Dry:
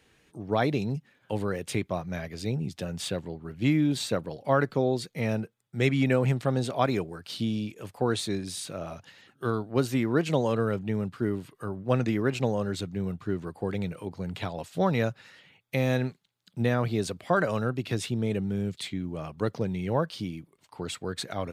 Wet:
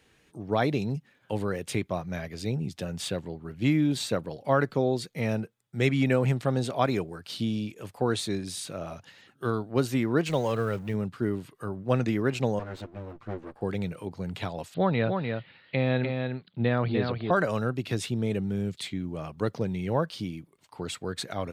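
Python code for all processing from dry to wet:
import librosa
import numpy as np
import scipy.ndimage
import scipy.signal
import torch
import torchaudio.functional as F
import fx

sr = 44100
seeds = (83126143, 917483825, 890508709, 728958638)

y = fx.chain(x, sr, fx.law_mismatch(coded='mu'),
    fx.peak_eq(hz=250.0, db=-5.0, octaves=1.5), at=(10.26, 10.94))
y = fx.chain(y, sr, fx.lower_of_two(delay_ms=8.6),
    fx.lowpass(hz=1600.0, slope=6),
    fx.low_shelf(hz=330.0, db=-8.0), at=(12.59, 13.61))
y = fx.chain(y, sr, fx.steep_lowpass(hz=4500.0, slope=72),
    fx.echo_single(ms=299, db=-5.0), at=(14.74, 17.31))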